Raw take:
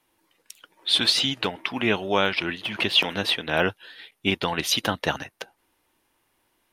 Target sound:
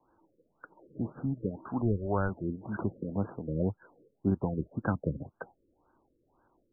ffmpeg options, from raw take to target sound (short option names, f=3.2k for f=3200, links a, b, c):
-filter_complex "[0:a]asplit=3[a][b][c];[a]afade=t=out:st=1.8:d=0.02[d];[b]asubboost=boost=10.5:cutoff=69,afade=t=in:st=1.8:d=0.02,afade=t=out:st=2.28:d=0.02[e];[c]afade=t=in:st=2.28:d=0.02[f];[d][e][f]amix=inputs=3:normalize=0,acrossover=split=220[g][h];[h]acompressor=threshold=-42dB:ratio=2[i];[g][i]amix=inputs=2:normalize=0,afftfilt=real='re*lt(b*sr/1024,550*pow(1700/550,0.5+0.5*sin(2*PI*1.9*pts/sr)))':imag='im*lt(b*sr/1024,550*pow(1700/550,0.5+0.5*sin(2*PI*1.9*pts/sr)))':win_size=1024:overlap=0.75,volume=3.5dB"